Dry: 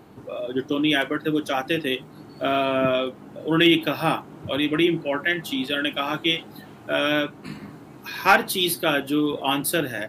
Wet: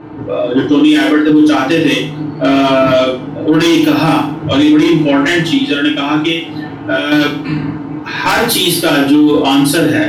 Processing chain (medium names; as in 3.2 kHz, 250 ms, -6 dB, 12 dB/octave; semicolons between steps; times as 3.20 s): 0.79–1.29 s: high-pass 350 Hz 12 dB/octave; level-controlled noise filter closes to 2.3 kHz, open at -16.5 dBFS; 5.39–7.12 s: compression 16:1, threshold -27 dBFS, peak gain reduction 11.5 dB; saturation -18 dBFS, distortion -10 dB; FDN reverb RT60 0.41 s, low-frequency decay 1.25×, high-frequency decay 1×, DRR -6 dB; loudness maximiser +11 dB; trim -1 dB